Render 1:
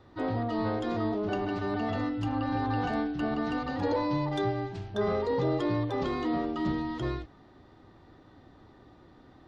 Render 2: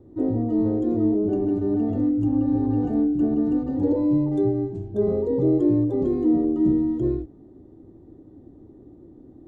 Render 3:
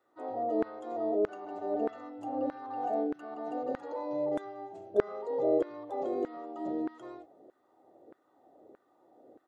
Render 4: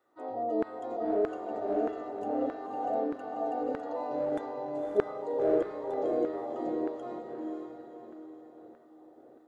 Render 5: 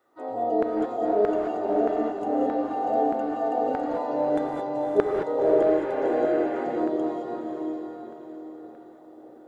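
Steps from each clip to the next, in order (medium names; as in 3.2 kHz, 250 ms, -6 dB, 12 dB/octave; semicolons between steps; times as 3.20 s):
FFT filter 180 Hz 0 dB, 330 Hz +7 dB, 1.3 kHz -23 dB, 5 kHz -26 dB, 7.3 kHz -10 dB; trim +5.5 dB
comb 1.5 ms, depth 36%; LFO high-pass saw down 1.6 Hz 470–1500 Hz; trim -2 dB
echo that smears into a reverb 538 ms, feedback 41%, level -3.5 dB
spectral replace 5.67–6.61 s, 1.4–3.2 kHz before; gated-style reverb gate 240 ms rising, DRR 1.5 dB; trim +5 dB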